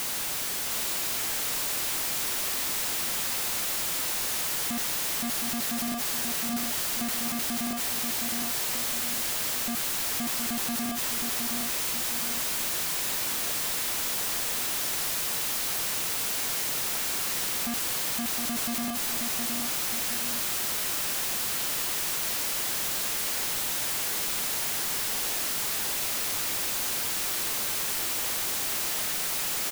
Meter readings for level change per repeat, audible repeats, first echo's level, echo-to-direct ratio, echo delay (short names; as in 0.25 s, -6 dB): -7.0 dB, 2, -4.5 dB, -3.5 dB, 0.715 s